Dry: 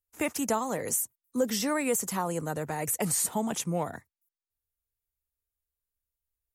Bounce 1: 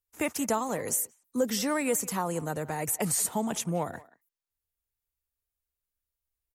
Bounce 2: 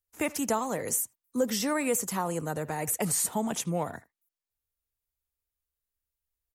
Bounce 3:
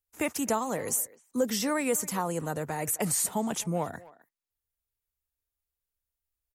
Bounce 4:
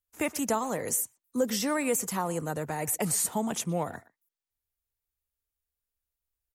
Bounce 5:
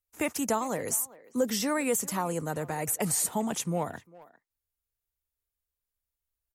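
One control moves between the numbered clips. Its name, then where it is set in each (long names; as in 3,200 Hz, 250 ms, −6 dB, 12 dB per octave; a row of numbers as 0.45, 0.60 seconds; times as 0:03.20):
far-end echo of a speakerphone, delay time: 180, 80, 260, 120, 400 milliseconds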